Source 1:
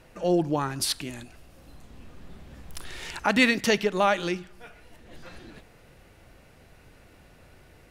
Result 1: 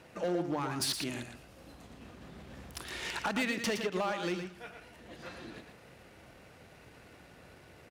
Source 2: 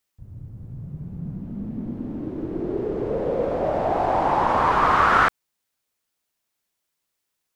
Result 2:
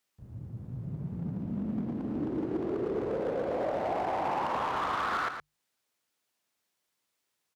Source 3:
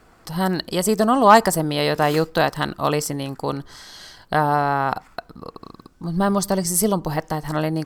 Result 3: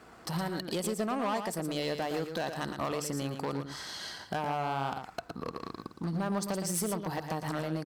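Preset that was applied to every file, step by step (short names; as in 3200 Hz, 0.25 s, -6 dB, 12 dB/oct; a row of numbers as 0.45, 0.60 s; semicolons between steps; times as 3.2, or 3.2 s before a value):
half-wave gain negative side -3 dB; HPF 41 Hz 24 dB/oct; high shelf 9700 Hz -6.5 dB; compressor 8:1, threshold -29 dBFS; overloaded stage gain 28.5 dB; low shelf 63 Hz -12 dB; notches 50/100/150 Hz; on a send: echo 0.115 s -7.5 dB; on the sum: gain +1.5 dB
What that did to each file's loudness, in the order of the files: -10.0, -10.5, -14.0 LU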